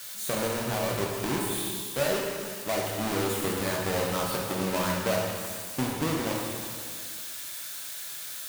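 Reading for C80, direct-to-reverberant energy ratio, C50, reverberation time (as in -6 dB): 2.5 dB, -2.5 dB, 0.5 dB, 2.0 s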